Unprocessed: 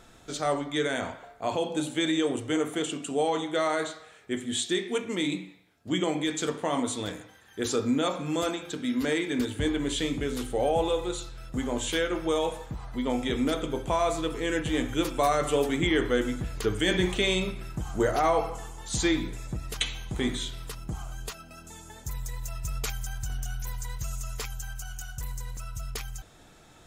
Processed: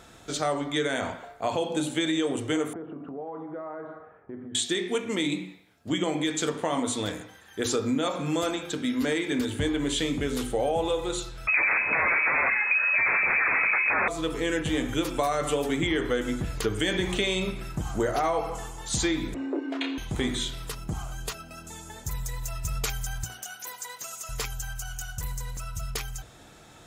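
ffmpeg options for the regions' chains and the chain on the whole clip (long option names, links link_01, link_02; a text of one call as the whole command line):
ffmpeg -i in.wav -filter_complex "[0:a]asettb=1/sr,asplit=3[link_01][link_02][link_03];[link_01]atrim=end=2.734[link_04];[link_02]atrim=start=2.73:end=4.55,asetpts=PTS-STARTPTS,afade=type=in:duration=0.004:curve=qsin,afade=type=out:start_time=1.816:duration=0.004:curve=qsin,lowpass=frequency=1300:width=0.5412,lowpass=frequency=1300:width=1.3066,acompressor=threshold=-39dB:ratio=5:attack=3.2:release=140:knee=1:detection=peak[link_05];[link_03]atrim=start=4.546[link_06];[link_04][link_05]acrossfade=duration=0.004:curve1=hsin:curve2=qsin[link_07];[link_07][link_06]acrossfade=duration=0.004:curve1=qsin:curve2=hsin,asettb=1/sr,asplit=3[link_08][link_09][link_10];[link_08]atrim=end=11.474[link_11];[link_09]atrim=start=11.47:end=14.08,asetpts=PTS-STARTPTS,afade=type=in:duration=0.004:curve=qsin,afade=type=out:start_time=2.606:duration=0.004:curve=qsin,aeval=exprs='0.2*sin(PI/2*6.31*val(0)/0.2)':channel_layout=same,lowpass=frequency=2200:width_type=q:width=0.5098,lowpass=frequency=2200:width_type=q:width=0.6013,lowpass=frequency=2200:width_type=q:width=0.9,lowpass=frequency=2200:width_type=q:width=2.563,afreqshift=-2600[link_12];[link_10]atrim=start=14.076[link_13];[link_11][link_12]acrossfade=duration=0.004:curve1=hsin:curve2=qsin[link_14];[link_14][link_13]acrossfade=duration=0.004:curve1=qsin:curve2=hsin,asettb=1/sr,asplit=3[link_15][link_16][link_17];[link_15]atrim=end=19.344[link_18];[link_16]atrim=start=19.34:end=19.98,asetpts=PTS-STARTPTS,afade=type=in:duration=0.004:curve=qsin,afade=type=out:start_time=0.636:duration=0.004:curve=qsin,lowpass=1800,asplit=2[link_19][link_20];[link_20]adelay=29,volume=-5dB[link_21];[link_19][link_21]amix=inputs=2:normalize=0,atrim=end_sample=28224,afreqshift=230[link_22];[link_17]atrim=start=19.976[link_23];[link_18][link_22]acrossfade=duration=0.004:curve1=hsin:curve2=qsin[link_24];[link_24][link_23]acrossfade=duration=0.004:curve1=qsin:curve2=hsin,asettb=1/sr,asplit=3[link_25][link_26][link_27];[link_25]atrim=end=23.244[link_28];[link_26]atrim=start=23.24:end=24.29,asetpts=PTS-STARTPTS,afade=type=in:duration=0.004:curve=qsin,afade=type=out:start_time=1.046:duration=0.004:curve=qsin,highpass=frequency=290:width=0.5412,highpass=frequency=290:width=1.3066,asoftclip=type=hard:threshold=-30dB[link_29];[link_27]atrim=start=24.286[link_30];[link_28][link_29]acrossfade=duration=0.004:curve1=hsin:curve2=qsin[link_31];[link_31][link_30]acrossfade=duration=0.004:curve1=qsin:curve2=hsin,highpass=41,bandreject=frequency=60:width_type=h:width=6,bandreject=frequency=120:width_type=h:width=6,bandreject=frequency=180:width_type=h:width=6,bandreject=frequency=240:width_type=h:width=6,bandreject=frequency=300:width_type=h:width=6,bandreject=frequency=360:width_type=h:width=6,bandreject=frequency=420:width_type=h:width=6,acompressor=threshold=-27dB:ratio=4,volume=4dB" out.wav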